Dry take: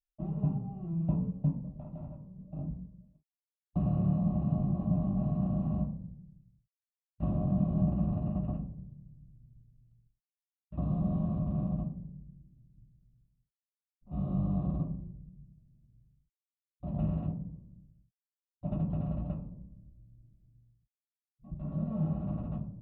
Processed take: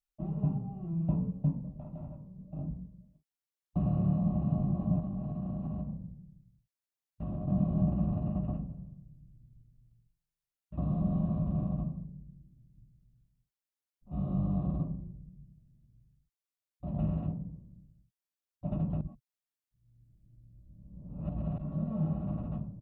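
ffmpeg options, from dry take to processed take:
-filter_complex "[0:a]asettb=1/sr,asplit=3[a][b][c];[a]atrim=end=4.994[d];[b]atrim=start=4.99:end=7.48,asetpts=PTS-STARTPTS,afade=t=in:d=0.004:c=qsin,afade=t=out:st=2.486:d=0.004:c=qsin,acompressor=threshold=-32dB:ratio=6:attack=3.2:release=140:knee=1:detection=peak[e];[c]atrim=start=7.476[f];[d][e]acrossfade=d=0.004:c1=hsin:c2=qsin[g];[g][f]acrossfade=d=0.004:c1=qsin:c2=hsin,asplit=3[h][i][j];[h]afade=t=out:st=8.68:d=0.02[k];[i]aecho=1:1:74|148|222|296|370|444:0.2|0.116|0.0671|0.0389|0.0226|0.0131,afade=t=in:st=8.68:d=0.02,afade=t=out:st=12.03:d=0.02[l];[j]afade=t=in:st=12.03:d=0.02[m];[k][l][m]amix=inputs=3:normalize=0,asplit=3[n][o][p];[n]atrim=end=19.012[q];[o]atrim=start=19.008:end=21.582,asetpts=PTS-STARTPTS,areverse[r];[p]atrim=start=21.578[s];[q][r]acrossfade=d=0.004:c1=hsin:c2=hsin[t];[t][s]acrossfade=d=0.004:c1=hsin:c2=hsin"

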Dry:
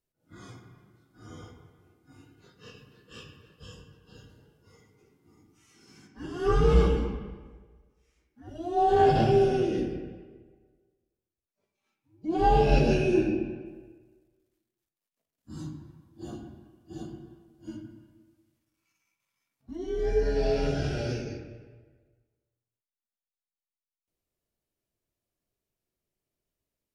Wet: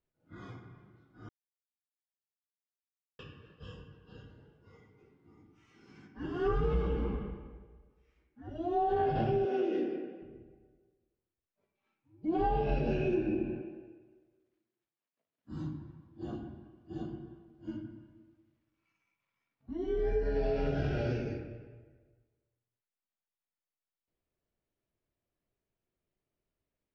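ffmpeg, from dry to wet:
-filter_complex "[0:a]asettb=1/sr,asplit=3[a][b][c];[a]atrim=end=9.454[d];[b]atrim=start=9.45:end=10.22,asetpts=PTS-STARTPTS,afade=t=in:d=0.004:c=qsin,afade=t=out:st=0.766:d=0.004:c=qsin,highpass=f=260:w=0.5412,highpass=f=260:w=1.3066[e];[c]atrim=start=10.216[f];[d][e]acrossfade=d=0.004:c1=hsin:c2=qsin[g];[g][f]acrossfade=d=0.004:c1=qsin:c2=hsin,asettb=1/sr,asplit=3[h][i][j];[h]atrim=end=13.624[k];[i]atrim=start=13.62:end=15.52,asetpts=PTS-STARTPTS,afade=t=in:d=0.004:c=qsin,afade=t=out:st=1.896:d=0.004:c=qsin,highpass=f=190:p=1[l];[j]atrim=start=15.516[m];[k][l]acrossfade=d=0.004:c1=hsin:c2=qsin[n];[n][m]acrossfade=d=0.004:c1=qsin:c2=hsin,asplit=3[o][p][q];[o]atrim=end=1.29,asetpts=PTS-STARTPTS,afade=t=out:st=1.286:d=0.004:c=hsin[r];[p]atrim=start=1.29:end=3.19,asetpts=PTS-STARTPTS,volume=0[s];[q]atrim=start=3.19,asetpts=PTS-STARTPTS,afade=t=in:d=0.004:c=hsin[t];[r][s][t]concat=n=3:v=0:a=1,lowpass=2.7k,acompressor=threshold=-27dB:ratio=6"

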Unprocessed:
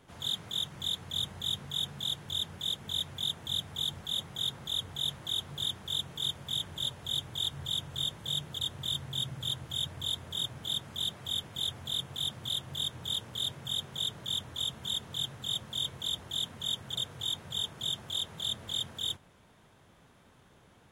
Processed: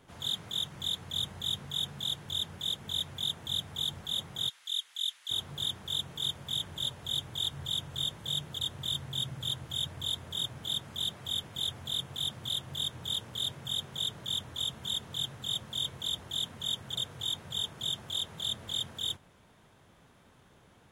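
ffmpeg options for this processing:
-filter_complex "[0:a]asplit=3[a][b][c];[a]afade=t=out:st=4.48:d=0.02[d];[b]asuperpass=centerf=5900:order=4:qfactor=0.56,afade=t=in:st=4.48:d=0.02,afade=t=out:st=5.29:d=0.02[e];[c]afade=t=in:st=5.29:d=0.02[f];[d][e][f]amix=inputs=3:normalize=0"

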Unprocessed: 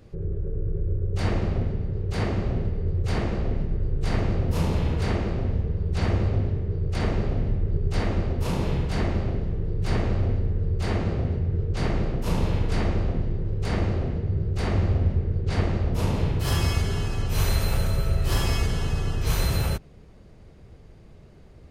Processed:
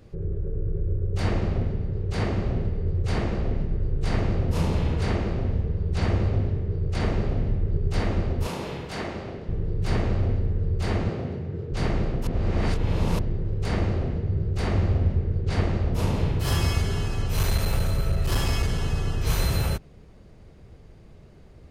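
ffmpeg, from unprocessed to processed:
-filter_complex "[0:a]asettb=1/sr,asplit=3[a][b][c];[a]atrim=end=1.264[d];[b]atrim=start=1.26:end=7.04,asetpts=PTS-STARTPTS,afade=t=in:d=0.004:c=qsin,afade=t=out:st=5.776:d=0.004:c=qsin,lowpass=12k[e];[c]atrim=start=7.036[f];[d][e]acrossfade=d=0.004:c1=hsin:c2=qsin[g];[g][f]acrossfade=d=0.004:c1=qsin:c2=hsin,asettb=1/sr,asplit=3[h][i][j];[h]atrim=end=8.474[k];[i]atrim=start=8.47:end=9.49,asetpts=PTS-STARTPTS,afade=t=in:d=0.004:c=qsin,afade=t=out:st=1.016:d=0.004:c=qsin,highpass=f=390:p=1[l];[j]atrim=start=9.486[m];[k][l]acrossfade=d=0.004:c1=hsin:c2=qsin[n];[n][m]acrossfade=d=0.004:c1=qsin:c2=hsin,asettb=1/sr,asplit=3[o][p][q];[o]atrim=end=11.094[r];[p]atrim=start=11.09:end=11.72,asetpts=PTS-STARTPTS,afade=t=in:d=0.004:c=qsin,afade=t=out:st=0.626:d=0.004:c=qsin,highpass=140[s];[q]atrim=start=11.716[t];[r][s]acrossfade=d=0.004:c1=hsin:c2=qsin[u];[u][t]acrossfade=d=0.004:c1=qsin:c2=hsin,asettb=1/sr,asplit=3[v][w][x];[v]atrim=end=17.324[y];[w]atrim=start=17.32:end=18.95,asetpts=PTS-STARTPTS,afade=t=in:d=0.004:c=qsin,afade=t=out:st=1.626:d=0.004:c=qsin,aeval=exprs='clip(val(0),-1,0.112)':c=same[z];[x]atrim=start=18.946[aa];[y][z]acrossfade=d=0.004:c1=hsin:c2=qsin[ab];[ab][aa]acrossfade=d=0.004:c1=qsin:c2=hsin,asplit=3[ac][ad][ae];[ac]atrim=end=12.272[af];[ad]atrim=start=12.268:end=13.192,asetpts=PTS-STARTPTS,areverse[ag];[ae]atrim=start=13.188[ah];[af][ag]acrossfade=d=0.004:c1=hsin:c2=hsin[ai];[ai][ah]acrossfade=d=0.004:c1=hsin:c2=hsin"

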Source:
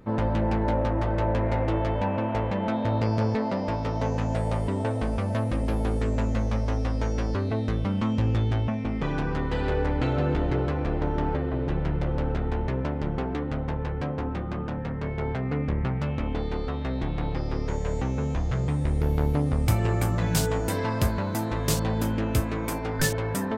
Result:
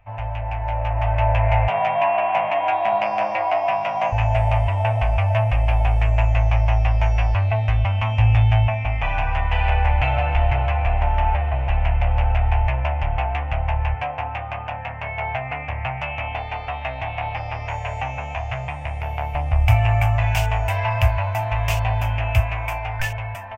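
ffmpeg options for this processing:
-filter_complex "[0:a]asettb=1/sr,asplit=3[a][b][c];[a]atrim=end=1.684[d];[b]atrim=start=1.68:end=4.12,asetpts=PTS-STARTPTS,afade=t=in:d=0.004:c=qsin,afade=t=out:st=2.436:d=0.004:c=qsin,afreqshift=99[e];[c]atrim=start=4.116[f];[d][e]acrossfade=d=0.004:c1=hsin:c2=qsin[g];[g][f]acrossfade=d=0.004:c1=qsin:c2=hsin,asettb=1/sr,asplit=3[h][i][j];[h]atrim=end=13.954[k];[i]atrim=start=13.95:end=19.35,asetpts=PTS-STARTPTS,afade=t=in:d=0.004:c=qsin,afade=t=out:st=5.396:d=0.004:c=qsin,highpass=140[l];[j]atrim=start=19.346[m];[k][l]acrossfade=d=0.004:c1=hsin:c2=qsin[n];[n][m]acrossfade=d=0.004:c1=qsin:c2=hsin,dynaudnorm=f=220:g=9:m=11dB,firequalizer=gain_entry='entry(110,0);entry(160,-26);entry(410,-28);entry(680,4);entry(1300,-8);entry(2600,8);entry(3900,-17);entry(5800,-12);entry(9500,-19);entry(15000,-10)':delay=0.05:min_phase=1"

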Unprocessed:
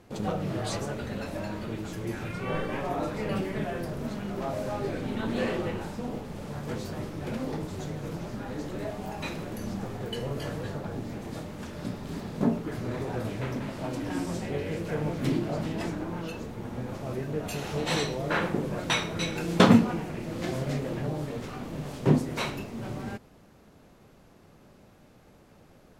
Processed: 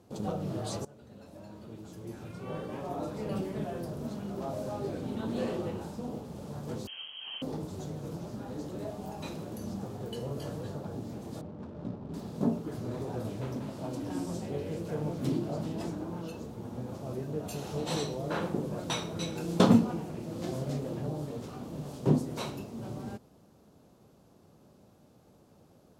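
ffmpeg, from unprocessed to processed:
-filter_complex "[0:a]asettb=1/sr,asplit=3[a][b][c];[a]atrim=end=6.874[d];[b]atrim=start=6.87:end=7.42,asetpts=PTS-STARTPTS,afade=t=in:d=0.004:c=qsin,afade=t=out:st=0.546:d=0.004:c=qsin,lowpass=f=2.8k:t=q:w=0.5098,lowpass=f=2.8k:t=q:w=0.6013,lowpass=f=2.8k:t=q:w=0.9,lowpass=f=2.8k:t=q:w=2.563,afreqshift=-3300[e];[c]atrim=start=7.416[f];[d][e]acrossfade=d=0.004:c1=hsin:c2=qsin[g];[g][f]acrossfade=d=0.004:c1=qsin:c2=hsin,asettb=1/sr,asplit=3[h][i][j];[h]atrim=end=11.414[k];[i]atrim=start=11.41:end=12.14,asetpts=PTS-STARTPTS,afade=t=in:d=0.004:c=qsin,afade=t=out:st=0.726:d=0.004:c=qsin,adynamicsmooth=sensitivity=7.5:basefreq=600[l];[j]atrim=start=12.136[m];[k][l]acrossfade=d=0.004:c1=hsin:c2=qsin[n];[n][m]acrossfade=d=0.004:c1=qsin:c2=hsin,asplit=2[o][p];[o]atrim=end=0.85,asetpts=PTS-STARTPTS,afade=t=out:st=0.846:d=0.004:c=hsin:silence=0.125893[q];[p]atrim=start=0.85,asetpts=PTS-STARTPTS,afade=t=in:d=2.57:silence=0.125893[r];[q][r]concat=n=2:v=0:a=1,highpass=70,equalizer=f=2k:w=1.2:g=-11,volume=-3dB"

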